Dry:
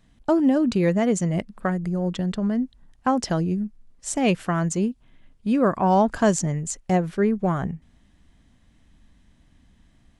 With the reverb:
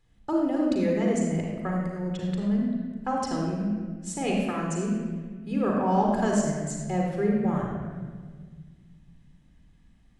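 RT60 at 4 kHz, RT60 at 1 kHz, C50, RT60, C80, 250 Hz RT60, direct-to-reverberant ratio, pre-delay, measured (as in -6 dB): 1.1 s, 1.4 s, 0.5 dB, 1.6 s, 2.0 dB, 2.5 s, -1.0 dB, 39 ms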